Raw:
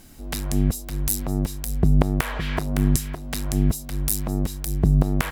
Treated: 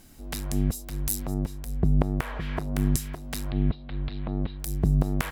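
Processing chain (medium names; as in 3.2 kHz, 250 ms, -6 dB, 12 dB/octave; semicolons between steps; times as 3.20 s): 1.34–2.76 s: treble shelf 2.7 kHz -9 dB; 3.51–4.60 s: steep low-pass 4.1 kHz 72 dB/octave; trim -4.5 dB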